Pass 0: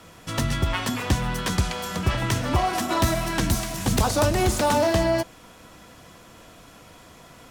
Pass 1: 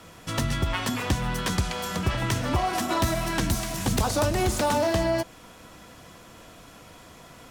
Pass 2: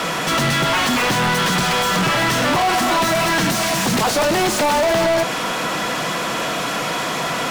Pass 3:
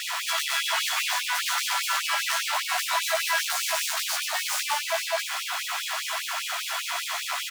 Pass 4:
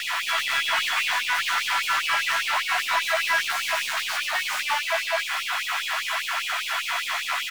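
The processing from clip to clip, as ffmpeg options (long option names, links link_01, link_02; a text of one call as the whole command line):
ffmpeg -i in.wav -af "acompressor=threshold=-25dB:ratio=1.5" out.wav
ffmpeg -i in.wav -filter_complex "[0:a]lowshelf=frequency=110:width_type=q:width=3:gain=-9,asplit=2[link_01][link_02];[link_02]highpass=frequency=720:poles=1,volume=39dB,asoftclip=type=tanh:threshold=-10.5dB[link_03];[link_01][link_03]amix=inputs=2:normalize=0,lowpass=frequency=3800:poles=1,volume=-6dB" out.wav
ffmpeg -i in.wav -filter_complex "[0:a]acrusher=bits=3:dc=4:mix=0:aa=0.000001,asplit=2[link_01][link_02];[link_02]adelay=14,volume=-3dB[link_03];[link_01][link_03]amix=inputs=2:normalize=0,afftfilt=real='re*gte(b*sr/1024,590*pow(2400/590,0.5+0.5*sin(2*PI*5*pts/sr)))':imag='im*gte(b*sr/1024,590*pow(2400/590,0.5+0.5*sin(2*PI*5*pts/sr)))':win_size=1024:overlap=0.75,volume=-2.5dB" out.wav
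ffmpeg -i in.wav -filter_complex "[0:a]acrossover=split=1300|3000[link_01][link_02][link_03];[link_02]aeval=exprs='0.1*sin(PI/2*1.58*val(0)/0.1)':channel_layout=same[link_04];[link_03]aeval=exprs='(tanh(50.1*val(0)+0.2)-tanh(0.2))/50.1':channel_layout=same[link_05];[link_01][link_04][link_05]amix=inputs=3:normalize=0" out.wav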